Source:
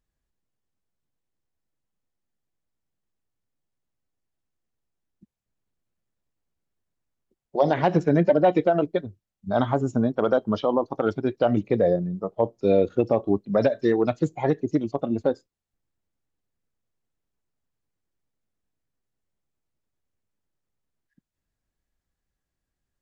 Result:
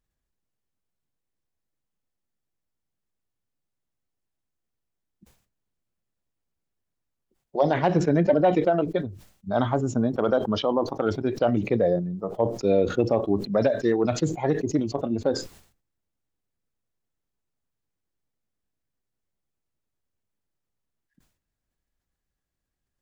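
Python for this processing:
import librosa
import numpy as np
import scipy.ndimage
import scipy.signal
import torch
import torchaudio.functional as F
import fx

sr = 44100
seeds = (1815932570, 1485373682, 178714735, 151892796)

y = fx.sustainer(x, sr, db_per_s=110.0)
y = y * librosa.db_to_amplitude(-1.5)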